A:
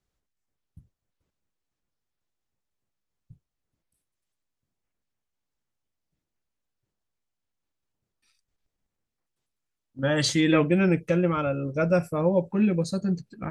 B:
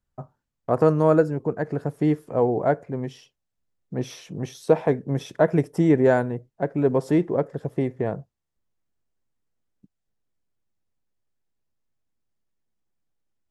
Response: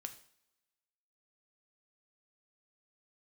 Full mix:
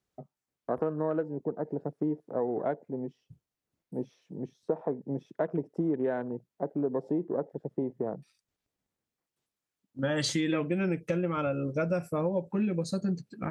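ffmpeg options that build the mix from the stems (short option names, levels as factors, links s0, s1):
-filter_complex "[0:a]highpass=f=280:p=1,volume=0.891[s0];[1:a]afwtdn=0.02,acrossover=split=180 7000:gain=0.0708 1 0.251[s1][s2][s3];[s1][s2][s3]amix=inputs=3:normalize=0,volume=0.422[s4];[s0][s4]amix=inputs=2:normalize=0,lowshelf=f=370:g=7,acompressor=threshold=0.0501:ratio=5"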